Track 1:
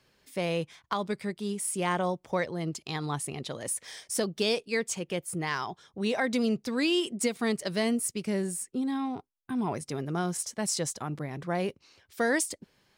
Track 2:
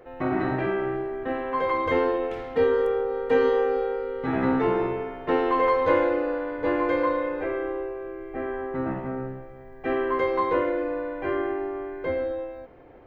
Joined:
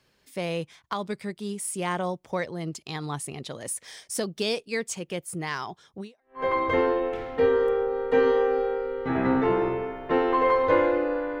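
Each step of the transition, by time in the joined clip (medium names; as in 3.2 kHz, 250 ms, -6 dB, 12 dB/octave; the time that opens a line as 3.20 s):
track 1
6.22 s: go over to track 2 from 1.40 s, crossfade 0.44 s exponential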